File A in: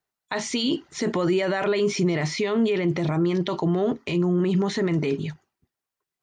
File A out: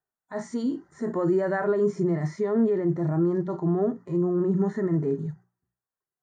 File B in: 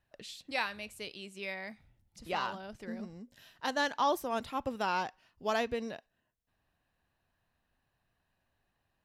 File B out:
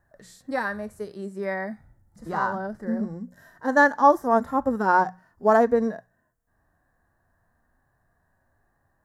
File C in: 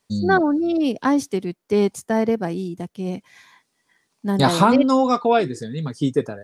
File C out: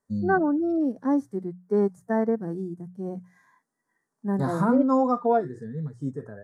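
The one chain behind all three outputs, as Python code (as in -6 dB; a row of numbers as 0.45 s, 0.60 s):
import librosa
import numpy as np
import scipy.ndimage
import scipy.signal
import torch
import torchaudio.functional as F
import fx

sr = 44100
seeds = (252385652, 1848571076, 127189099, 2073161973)

y = fx.hum_notches(x, sr, base_hz=60, count=3)
y = fx.hpss(y, sr, part='percussive', gain_db=-16)
y = fx.curve_eq(y, sr, hz=(1800.0, 2600.0, 7200.0), db=(0, -26, -5))
y = y * 10.0 ** (-26 / 20.0) / np.sqrt(np.mean(np.square(y)))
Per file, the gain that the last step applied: -0.5 dB, +15.0 dB, -4.0 dB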